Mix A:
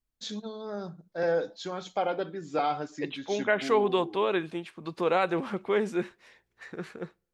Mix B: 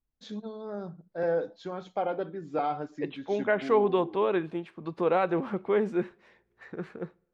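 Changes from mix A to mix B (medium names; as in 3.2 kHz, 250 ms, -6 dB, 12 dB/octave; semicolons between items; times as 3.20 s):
second voice: send +10.0 dB; master: add low-pass 1.2 kHz 6 dB/octave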